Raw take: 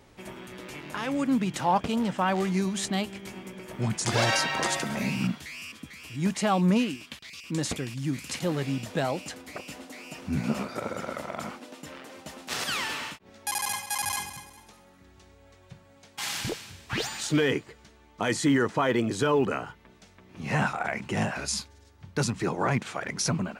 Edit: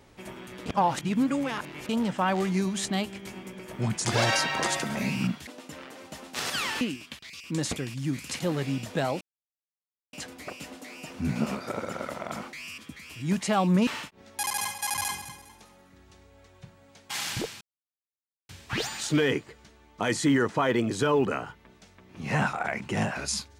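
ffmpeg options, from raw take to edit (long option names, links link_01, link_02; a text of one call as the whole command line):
ffmpeg -i in.wav -filter_complex "[0:a]asplit=9[link_01][link_02][link_03][link_04][link_05][link_06][link_07][link_08][link_09];[link_01]atrim=end=0.662[link_10];[link_02]atrim=start=0.658:end=1.892,asetpts=PTS-STARTPTS,areverse[link_11];[link_03]atrim=start=1.888:end=5.472[link_12];[link_04]atrim=start=11.608:end=12.952[link_13];[link_05]atrim=start=6.808:end=9.21,asetpts=PTS-STARTPTS,afade=type=out:start_time=2.398:duration=0.004:curve=hsin,apad=pad_dur=0.92[link_14];[link_06]atrim=start=9.21:end=11.612,asetpts=PTS-STARTPTS,afade=type=in:duration=0.004:curve=hsin[link_15];[link_07]atrim=start=5.468:end=6.812[link_16];[link_08]atrim=start=12.948:end=16.69,asetpts=PTS-STARTPTS,afade=type=out:start_time=3.738:duration=0.004:curve=hsin,apad=pad_dur=0.88[link_17];[link_09]atrim=start=16.69,asetpts=PTS-STARTPTS,afade=type=in:duration=0.004:curve=hsin[link_18];[link_10][link_11]acrossfade=duration=0.004:curve1=hsin:curve2=hsin[link_19];[link_19][link_12]acrossfade=duration=0.004:curve1=hsin:curve2=hsin[link_20];[link_20][link_13]acrossfade=duration=0.004:curve1=hsin:curve2=hsin[link_21];[link_14][link_15]concat=n=2:v=0:a=1[link_22];[link_21][link_22]acrossfade=duration=0.004:curve1=hsin:curve2=hsin[link_23];[link_23][link_16]acrossfade=duration=0.004:curve1=hsin:curve2=hsin[link_24];[link_17][link_18]concat=n=2:v=0:a=1[link_25];[link_24][link_25]acrossfade=duration=0.004:curve1=hsin:curve2=hsin" out.wav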